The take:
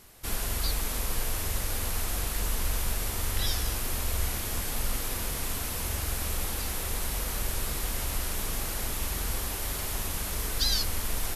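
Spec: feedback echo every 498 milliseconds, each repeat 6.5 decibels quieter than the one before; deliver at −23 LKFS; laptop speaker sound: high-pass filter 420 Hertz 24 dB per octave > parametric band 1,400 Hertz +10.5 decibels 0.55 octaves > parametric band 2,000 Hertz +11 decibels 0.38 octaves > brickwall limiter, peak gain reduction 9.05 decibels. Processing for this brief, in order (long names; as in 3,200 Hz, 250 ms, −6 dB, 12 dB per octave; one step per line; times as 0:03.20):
high-pass filter 420 Hz 24 dB per octave
parametric band 1,400 Hz +10.5 dB 0.55 octaves
parametric band 2,000 Hz +11 dB 0.38 octaves
repeating echo 498 ms, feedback 47%, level −6.5 dB
level +8.5 dB
brickwall limiter −15.5 dBFS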